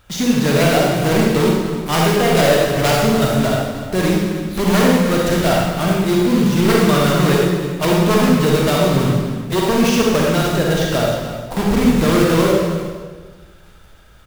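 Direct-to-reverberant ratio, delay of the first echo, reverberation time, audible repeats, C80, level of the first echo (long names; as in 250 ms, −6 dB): −3.0 dB, 311 ms, 1.5 s, 1, 1.0 dB, −13.5 dB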